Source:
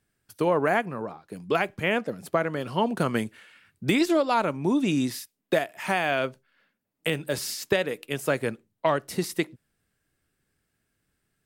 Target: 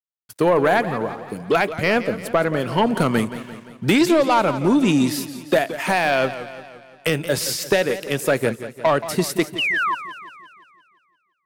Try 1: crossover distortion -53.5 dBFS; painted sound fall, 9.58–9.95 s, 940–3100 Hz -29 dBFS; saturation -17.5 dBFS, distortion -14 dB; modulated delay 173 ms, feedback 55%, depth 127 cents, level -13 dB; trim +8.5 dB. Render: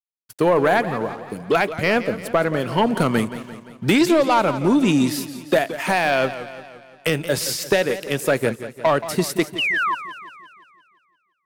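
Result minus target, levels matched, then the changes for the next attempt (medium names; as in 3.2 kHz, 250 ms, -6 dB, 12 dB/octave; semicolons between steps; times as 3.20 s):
crossover distortion: distortion +6 dB
change: crossover distortion -60 dBFS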